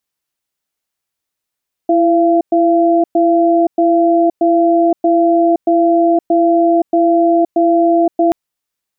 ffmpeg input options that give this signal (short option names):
-f lavfi -i "aevalsrc='0.282*(sin(2*PI*334*t)+sin(2*PI*683*t))*clip(min(mod(t,0.63),0.52-mod(t,0.63))/0.005,0,1)':d=6.43:s=44100"